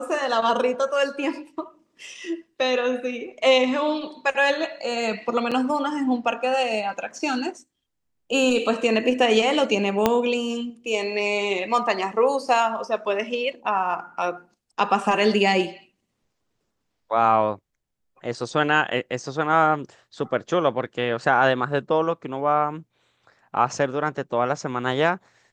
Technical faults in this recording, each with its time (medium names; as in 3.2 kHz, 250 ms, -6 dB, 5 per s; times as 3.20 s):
5.51–5.52 s: dropout 6.3 ms
10.06 s: pop -4 dBFS